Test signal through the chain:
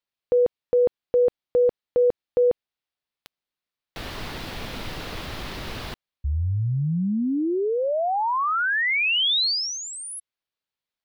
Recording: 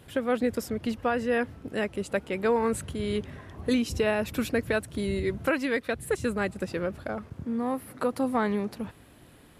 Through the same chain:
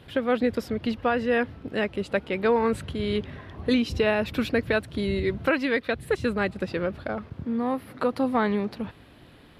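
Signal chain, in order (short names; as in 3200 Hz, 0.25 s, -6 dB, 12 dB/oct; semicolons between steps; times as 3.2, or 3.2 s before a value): resonant high shelf 5500 Hz -9.5 dB, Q 1.5; gain +2.5 dB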